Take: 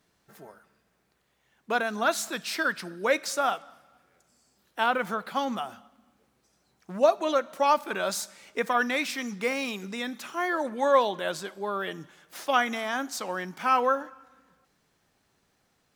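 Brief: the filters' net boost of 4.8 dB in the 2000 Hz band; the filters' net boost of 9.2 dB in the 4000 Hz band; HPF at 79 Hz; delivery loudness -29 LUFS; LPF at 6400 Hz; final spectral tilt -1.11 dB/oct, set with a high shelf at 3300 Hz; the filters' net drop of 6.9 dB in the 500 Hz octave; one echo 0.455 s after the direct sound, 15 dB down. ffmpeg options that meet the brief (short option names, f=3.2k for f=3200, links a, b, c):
-af "highpass=79,lowpass=6.4k,equalizer=f=500:t=o:g=-9,equalizer=f=2k:t=o:g=4,highshelf=f=3.3k:g=5,equalizer=f=4k:t=o:g=7.5,aecho=1:1:455:0.178,volume=-3dB"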